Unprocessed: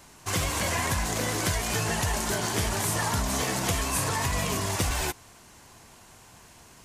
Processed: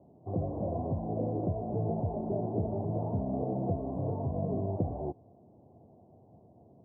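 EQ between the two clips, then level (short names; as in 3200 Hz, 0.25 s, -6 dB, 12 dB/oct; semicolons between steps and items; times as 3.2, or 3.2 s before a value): HPF 86 Hz 24 dB/oct; elliptic low-pass 700 Hz, stop band 60 dB; 0.0 dB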